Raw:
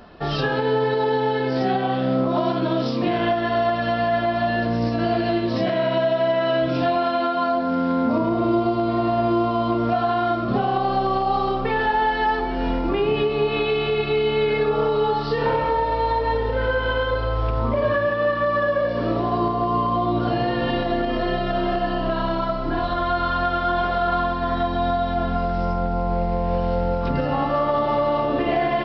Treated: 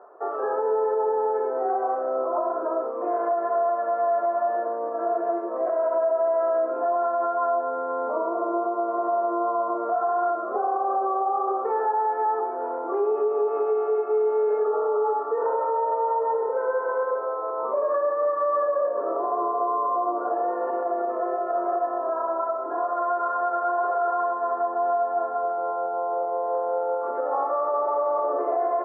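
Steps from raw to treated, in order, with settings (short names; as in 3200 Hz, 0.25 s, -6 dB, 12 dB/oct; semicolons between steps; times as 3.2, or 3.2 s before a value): elliptic band-pass 400–1300 Hz, stop band 50 dB; limiter -16.5 dBFS, peak gain reduction 5.5 dB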